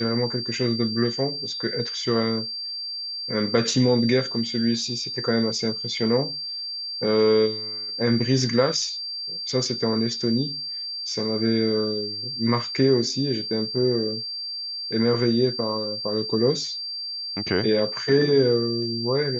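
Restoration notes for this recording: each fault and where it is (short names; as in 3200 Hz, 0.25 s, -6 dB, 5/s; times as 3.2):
tone 4700 Hz -29 dBFS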